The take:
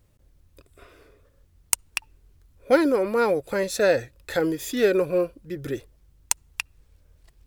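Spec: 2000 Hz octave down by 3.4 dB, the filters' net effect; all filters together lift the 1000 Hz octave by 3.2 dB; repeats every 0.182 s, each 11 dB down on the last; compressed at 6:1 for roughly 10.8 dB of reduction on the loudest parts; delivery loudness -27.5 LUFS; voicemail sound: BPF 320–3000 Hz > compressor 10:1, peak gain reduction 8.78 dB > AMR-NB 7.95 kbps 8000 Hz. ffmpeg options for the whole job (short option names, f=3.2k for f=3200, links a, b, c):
-af "equalizer=f=1k:t=o:g=6.5,equalizer=f=2k:t=o:g=-7,acompressor=threshold=-23dB:ratio=6,highpass=320,lowpass=3k,aecho=1:1:182|364|546:0.282|0.0789|0.0221,acompressor=threshold=-29dB:ratio=10,volume=8.5dB" -ar 8000 -c:a libopencore_amrnb -b:a 7950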